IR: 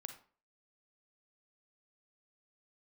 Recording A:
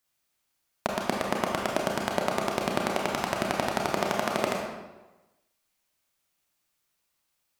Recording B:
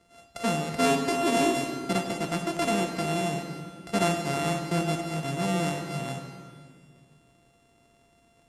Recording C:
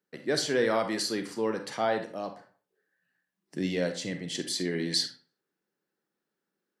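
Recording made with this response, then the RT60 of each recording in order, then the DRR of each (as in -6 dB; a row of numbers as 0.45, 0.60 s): C; 1.1, 2.0, 0.45 s; -1.0, 3.5, 6.5 dB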